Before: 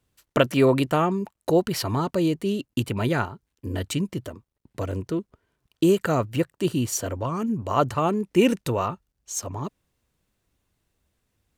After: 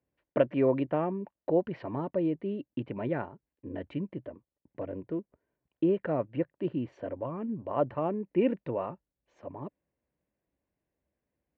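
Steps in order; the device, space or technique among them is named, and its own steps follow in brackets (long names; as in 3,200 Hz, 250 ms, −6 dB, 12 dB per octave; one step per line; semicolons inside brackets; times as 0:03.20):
bass cabinet (loudspeaker in its box 66–2,200 Hz, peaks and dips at 100 Hz −10 dB, 300 Hz +4 dB, 570 Hz +7 dB, 1,300 Hz −9 dB)
level −9 dB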